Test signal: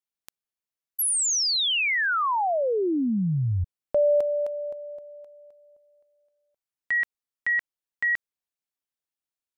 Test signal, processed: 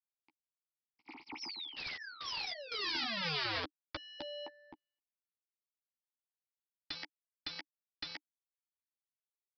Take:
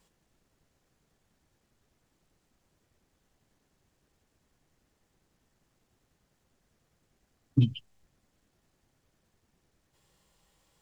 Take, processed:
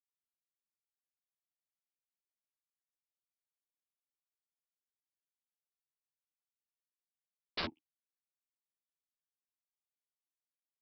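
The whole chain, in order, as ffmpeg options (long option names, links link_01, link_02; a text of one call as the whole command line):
ffmpeg -i in.wav -filter_complex "[0:a]acrusher=bits=4:mix=0:aa=0.5,asplit=3[link_01][link_02][link_03];[link_01]bandpass=frequency=300:width_type=q:width=8,volume=0dB[link_04];[link_02]bandpass=frequency=870:width_type=q:width=8,volume=-6dB[link_05];[link_03]bandpass=frequency=2240:width_type=q:width=8,volume=-9dB[link_06];[link_04][link_05][link_06]amix=inputs=3:normalize=0,equalizer=frequency=3600:width=2.5:gain=-11.5,agate=range=-11dB:threshold=-60dB:ratio=16:release=57:detection=rms,alimiter=level_in=5dB:limit=-24dB:level=0:latency=1:release=372,volume=-5dB,aeval=exprs='(mod(150*val(0)+1,2)-1)/150':channel_layout=same,aemphasis=mode=production:type=75kf,asplit=2[link_07][link_08];[link_08]adelay=12,volume=-5.5dB[link_09];[link_07][link_09]amix=inputs=2:normalize=0,aresample=11025,aresample=44100,afftfilt=real='re*lt(hypot(re,im),0.0282)':imag='im*lt(hypot(re,im),0.0282)':win_size=1024:overlap=0.75,volume=10dB" out.wav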